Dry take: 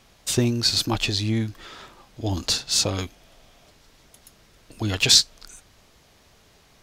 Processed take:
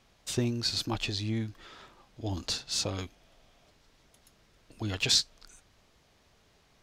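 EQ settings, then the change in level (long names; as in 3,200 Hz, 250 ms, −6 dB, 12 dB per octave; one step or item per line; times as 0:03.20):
high-shelf EQ 8,900 Hz −8 dB
−8.0 dB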